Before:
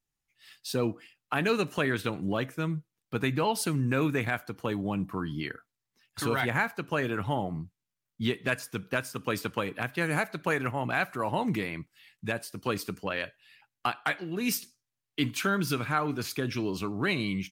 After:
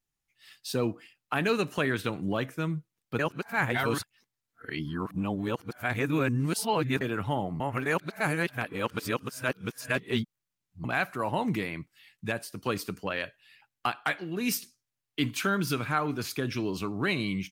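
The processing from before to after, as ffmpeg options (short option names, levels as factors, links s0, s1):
-filter_complex "[0:a]asplit=5[s0][s1][s2][s3][s4];[s0]atrim=end=3.192[s5];[s1]atrim=start=3.188:end=7.012,asetpts=PTS-STARTPTS,areverse[s6];[s2]atrim=start=7.008:end=7.602[s7];[s3]atrim=start=7.598:end=10.842,asetpts=PTS-STARTPTS,areverse[s8];[s4]atrim=start=10.838[s9];[s5][s6]acrossfade=d=0.004:c1=hsin:c2=hsin[s10];[s10][s7]acrossfade=d=0.004:c1=hsin:c2=hsin[s11];[s11][s8]acrossfade=d=0.004:c1=hsin:c2=hsin[s12];[s12][s9]acrossfade=d=0.004:c1=hsin:c2=hsin"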